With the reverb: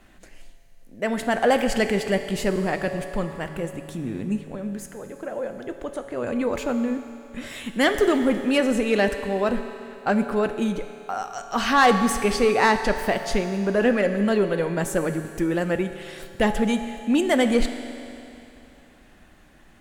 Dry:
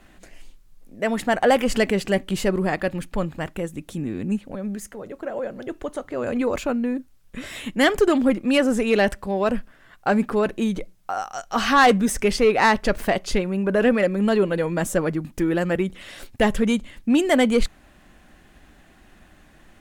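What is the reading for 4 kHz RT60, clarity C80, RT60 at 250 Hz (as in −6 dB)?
2.8 s, 9.0 dB, 2.8 s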